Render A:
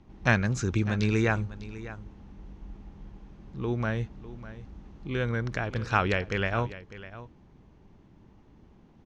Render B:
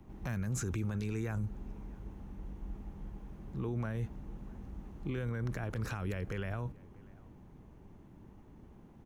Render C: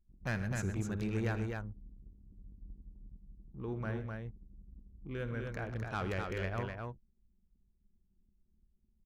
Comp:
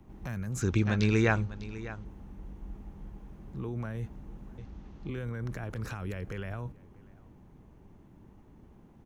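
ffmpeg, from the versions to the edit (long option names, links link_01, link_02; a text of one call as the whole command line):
ffmpeg -i take0.wav -i take1.wav -filter_complex "[0:a]asplit=2[link_01][link_02];[1:a]asplit=3[link_03][link_04][link_05];[link_03]atrim=end=0.622[link_06];[link_01]atrim=start=0.618:end=2.052[link_07];[link_04]atrim=start=2.048:end=4.582[link_08];[link_02]atrim=start=4.578:end=5.092[link_09];[link_05]atrim=start=5.088[link_10];[link_06][link_07]acrossfade=duration=0.004:curve1=hsin:curve2=hsin[link_11];[link_11][link_08]acrossfade=duration=0.004:curve1=hsin:curve2=hsin[link_12];[link_12][link_09]acrossfade=duration=0.004:curve1=hsin:curve2=hsin[link_13];[link_13][link_10]acrossfade=duration=0.004:curve1=hsin:curve2=hsin" out.wav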